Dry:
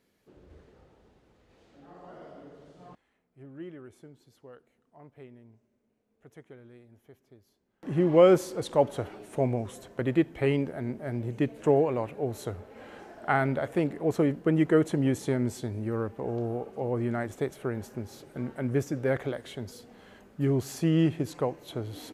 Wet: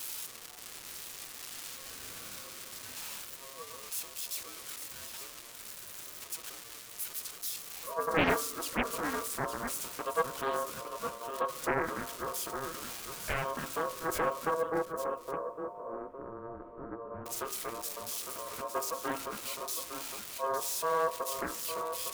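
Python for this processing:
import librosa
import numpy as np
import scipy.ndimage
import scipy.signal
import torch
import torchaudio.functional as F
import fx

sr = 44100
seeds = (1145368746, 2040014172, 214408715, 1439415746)

y = x + 0.5 * 10.0 ** (-19.5 / 20.0) * np.diff(np.sign(x), prepend=np.sign(x[:1]))
y = fx.spec_gate(y, sr, threshold_db=-30, keep='strong')
y = fx.peak_eq(y, sr, hz=300.0, db=6.5, octaves=0.27)
y = fx.hum_notches(y, sr, base_hz=60, count=9)
y = y * np.sin(2.0 * np.pi * 810.0 * np.arange(len(y)) / sr)
y = fx.bessel_lowpass(y, sr, hz=720.0, order=4, at=(14.54, 17.26))
y = y + 10.0 ** (-8.5 / 20.0) * np.pad(y, (int(859 * sr / 1000.0), 0))[:len(y)]
y = fx.rev_plate(y, sr, seeds[0], rt60_s=3.8, hf_ratio=0.8, predelay_ms=0, drr_db=20.0)
y = fx.doppler_dist(y, sr, depth_ms=0.95)
y = y * librosa.db_to_amplitude(-6.0)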